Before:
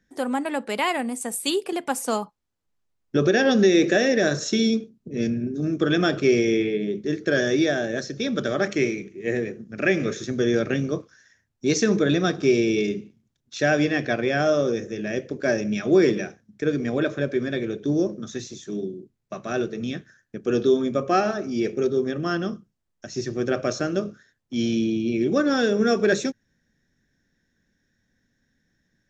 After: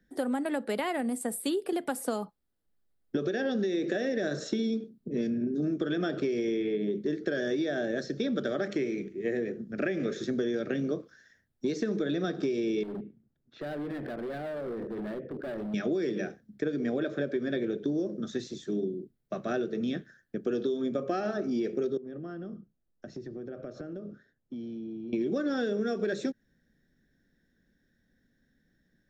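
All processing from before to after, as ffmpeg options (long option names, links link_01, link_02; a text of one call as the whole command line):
ffmpeg -i in.wav -filter_complex "[0:a]asettb=1/sr,asplit=3[link_01][link_02][link_03];[link_01]atrim=end=12.834[link_04];[link_02]atrim=start=12.83:end=15.74,asetpts=PTS-STARTPTS,afade=type=in:duration=0.004:curve=qsin,afade=type=out:start_time=2.906:duration=0.004:curve=qsin,lowpass=1600,acompressor=threshold=-27dB:ratio=10:attack=3.2:release=140:knee=1:detection=peak,asoftclip=type=hard:threshold=-33.5dB[link_05];[link_03]atrim=start=15.736[link_06];[link_04][link_05]acrossfade=duration=0.004:curve1=hsin:curve2=qsin[link_07];[link_07][link_06]acrossfade=duration=0.004:curve1=qsin:curve2=hsin,asettb=1/sr,asplit=3[link_08][link_09][link_10];[link_08]atrim=end=21.974[link_11];[link_09]atrim=start=21.97:end=25.13,asetpts=PTS-STARTPTS,afade=type=in:duration=0.004:curve=qsin,afade=type=out:start_time=3.156:duration=0.004:curve=qsin,lowpass=4600,equalizer=frequency=3300:width_type=o:width=2.6:gain=-8.5,acompressor=threshold=-36dB:ratio=12:attack=3.2:release=140:knee=1:detection=peak[link_12];[link_10]atrim=start=25.126[link_13];[link_11][link_12]acrossfade=duration=0.004:curve1=hsin:curve2=qsin[link_14];[link_14][link_13]acrossfade=duration=0.004:curve1=qsin:curve2=hsin,acrossover=split=150|2200[link_15][link_16][link_17];[link_15]acompressor=threshold=-48dB:ratio=4[link_18];[link_16]acompressor=threshold=-21dB:ratio=4[link_19];[link_17]acompressor=threshold=-33dB:ratio=4[link_20];[link_18][link_19][link_20]amix=inputs=3:normalize=0,equalizer=frequency=100:width_type=o:width=0.67:gain=-7,equalizer=frequency=1000:width_type=o:width=0.67:gain=-8,equalizer=frequency=2500:width_type=o:width=0.67:gain=-8,equalizer=frequency=6300:width_type=o:width=0.67:gain=-12,acompressor=threshold=-28dB:ratio=6,volume=1.5dB" out.wav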